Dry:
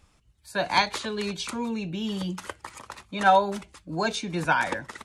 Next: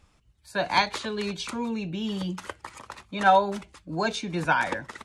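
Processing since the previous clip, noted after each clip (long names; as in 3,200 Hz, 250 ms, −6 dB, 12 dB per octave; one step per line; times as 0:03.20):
high-shelf EQ 8,100 Hz −6.5 dB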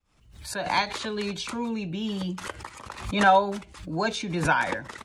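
fade in at the beginning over 1.10 s
background raised ahead of every attack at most 83 dB per second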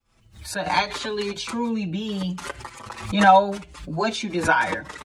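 barber-pole flanger 5.5 ms −0.72 Hz
level +6 dB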